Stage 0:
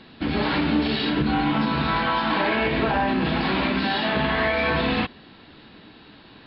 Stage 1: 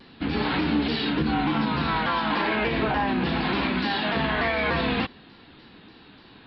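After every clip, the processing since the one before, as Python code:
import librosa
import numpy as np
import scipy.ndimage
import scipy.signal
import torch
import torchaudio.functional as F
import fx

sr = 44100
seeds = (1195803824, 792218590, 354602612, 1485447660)

y = fx.notch(x, sr, hz=610.0, q=12.0)
y = fx.vibrato_shape(y, sr, shape='saw_down', rate_hz=3.4, depth_cents=100.0)
y = y * librosa.db_to_amplitude(-2.0)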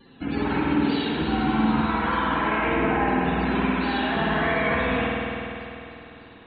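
y = fx.spec_topn(x, sr, count=64)
y = fx.rev_spring(y, sr, rt60_s=3.1, pass_ms=(50,), chirp_ms=50, drr_db=-3.5)
y = y * librosa.db_to_amplitude(-3.0)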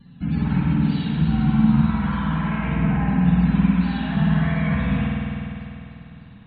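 y = fx.low_shelf_res(x, sr, hz=250.0, db=12.5, q=3.0)
y = y * librosa.db_to_amplitude(-6.0)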